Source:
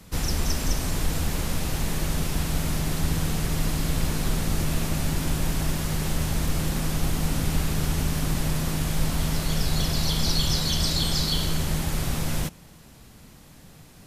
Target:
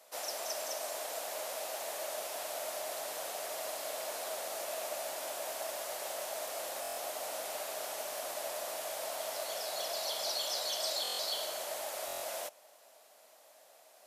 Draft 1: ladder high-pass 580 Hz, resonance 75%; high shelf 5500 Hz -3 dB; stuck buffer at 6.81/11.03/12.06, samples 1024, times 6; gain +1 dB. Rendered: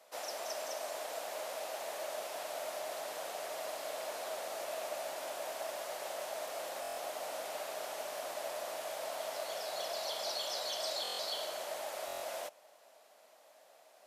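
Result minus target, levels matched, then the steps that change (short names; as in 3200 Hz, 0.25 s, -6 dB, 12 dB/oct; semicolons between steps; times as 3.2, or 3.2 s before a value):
8000 Hz band -3.5 dB
change: high shelf 5500 Hz +5.5 dB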